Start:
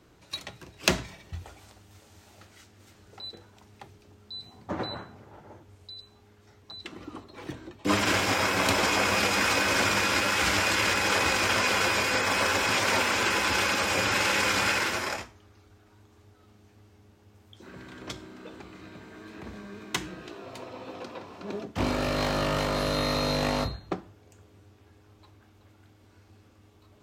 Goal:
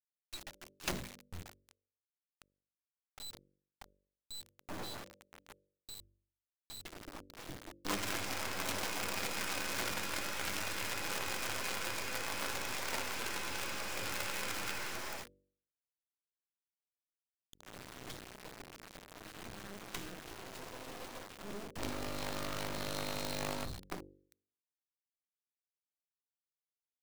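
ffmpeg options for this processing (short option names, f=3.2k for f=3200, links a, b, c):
-af "acrusher=bits=4:dc=4:mix=0:aa=0.000001,bandreject=f=48.39:t=h:w=4,bandreject=f=96.78:t=h:w=4,bandreject=f=145.17:t=h:w=4,bandreject=f=193.56:t=h:w=4,bandreject=f=241.95:t=h:w=4,bandreject=f=290.34:t=h:w=4,bandreject=f=338.73:t=h:w=4,bandreject=f=387.12:t=h:w=4,bandreject=f=435.51:t=h:w=4,bandreject=f=483.9:t=h:w=4,bandreject=f=532.29:t=h:w=4,bandreject=f=580.68:t=h:w=4,aeval=exprs='(tanh(28.2*val(0)+0.6)-tanh(0.6))/28.2':c=same,volume=1.5dB"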